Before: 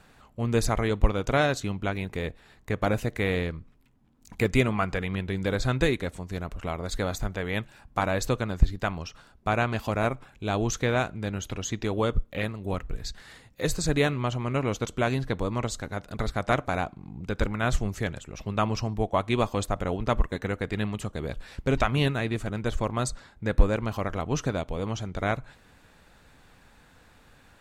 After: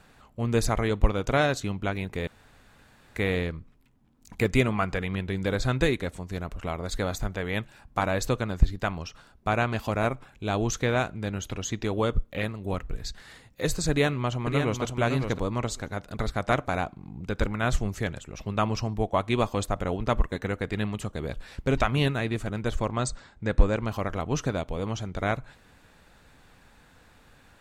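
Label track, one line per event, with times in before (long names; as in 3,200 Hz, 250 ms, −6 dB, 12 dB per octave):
2.270000	3.160000	fill with room tone
13.900000	14.820000	delay throw 560 ms, feedback 10%, level −6 dB
22.860000	23.870000	linear-phase brick-wall low-pass 8,900 Hz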